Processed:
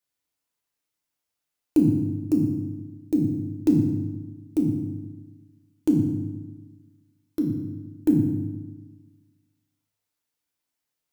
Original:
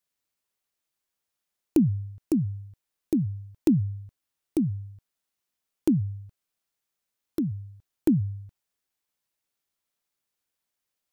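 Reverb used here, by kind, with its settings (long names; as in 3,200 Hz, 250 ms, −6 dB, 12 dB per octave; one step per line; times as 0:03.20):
feedback delay network reverb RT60 1.2 s, low-frequency decay 1.25×, high-frequency decay 0.75×, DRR 0 dB
level −2.5 dB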